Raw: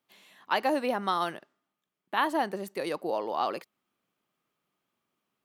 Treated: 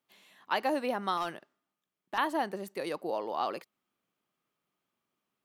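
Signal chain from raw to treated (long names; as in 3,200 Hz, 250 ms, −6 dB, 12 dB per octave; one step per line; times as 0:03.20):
0:01.17–0:02.18: hard clipping −22.5 dBFS, distortion −23 dB
level −3 dB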